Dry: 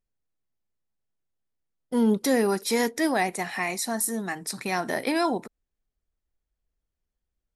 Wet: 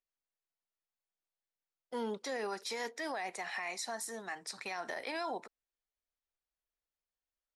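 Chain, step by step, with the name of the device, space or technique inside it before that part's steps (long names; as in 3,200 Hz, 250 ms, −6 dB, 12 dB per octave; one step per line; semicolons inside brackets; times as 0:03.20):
DJ mixer with the lows and highs turned down (three-way crossover with the lows and the highs turned down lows −17 dB, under 470 Hz, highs −22 dB, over 7,800 Hz; brickwall limiter −24.5 dBFS, peak gain reduction 10.5 dB)
0:02.11–0:02.57: low-pass filter 10,000 Hz 12 dB per octave
level −5 dB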